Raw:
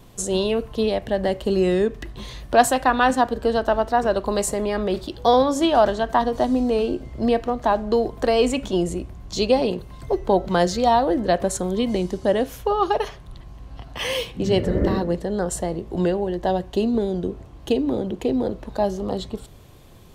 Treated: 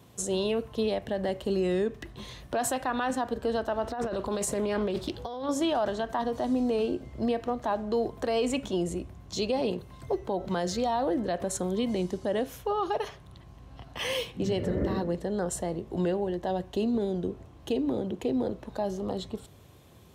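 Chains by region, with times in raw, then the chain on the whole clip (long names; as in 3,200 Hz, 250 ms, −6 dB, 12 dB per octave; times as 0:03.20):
0:03.83–0:05.49: compressor whose output falls as the input rises −25 dBFS + highs frequency-modulated by the lows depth 0.21 ms
whole clip: high-pass filter 62 Hz 24 dB per octave; notch filter 4,600 Hz, Q 25; brickwall limiter −14 dBFS; level −5.5 dB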